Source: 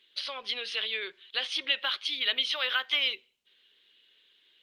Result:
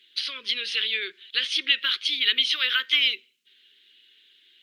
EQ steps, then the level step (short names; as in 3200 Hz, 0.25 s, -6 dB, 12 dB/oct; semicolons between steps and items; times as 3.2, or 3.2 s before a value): HPF 220 Hz 12 dB/oct; Butterworth band-stop 750 Hz, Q 0.65; +6.5 dB